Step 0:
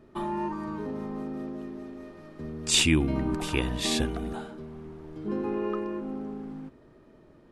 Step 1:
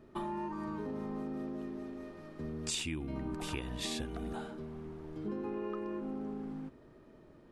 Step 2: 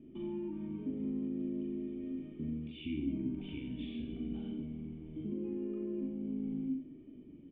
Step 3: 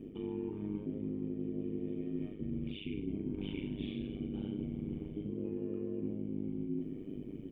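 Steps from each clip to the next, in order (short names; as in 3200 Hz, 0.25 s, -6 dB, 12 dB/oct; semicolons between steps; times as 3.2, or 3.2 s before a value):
compressor 8:1, threshold -32 dBFS, peak gain reduction 14.5 dB; gain -2.5 dB
limiter -34 dBFS, peak gain reduction 10.5 dB; vocal tract filter i; reverse bouncing-ball echo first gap 40 ms, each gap 1.15×, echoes 5; gain +10 dB
reverse; compressor 6:1, threshold -45 dBFS, peak gain reduction 14 dB; reverse; AM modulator 100 Hz, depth 85%; gain +13 dB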